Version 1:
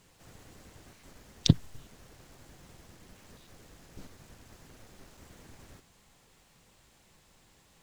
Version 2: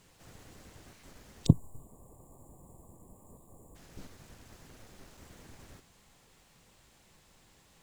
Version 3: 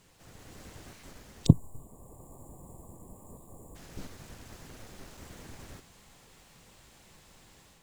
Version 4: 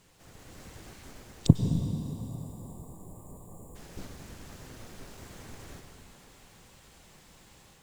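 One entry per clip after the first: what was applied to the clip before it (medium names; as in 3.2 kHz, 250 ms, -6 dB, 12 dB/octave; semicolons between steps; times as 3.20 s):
time-frequency box 1.46–3.76 s, 1.2–6.8 kHz -26 dB
level rider gain up to 5.5 dB
plate-style reverb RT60 3.5 s, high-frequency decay 0.75×, pre-delay 85 ms, DRR 4.5 dB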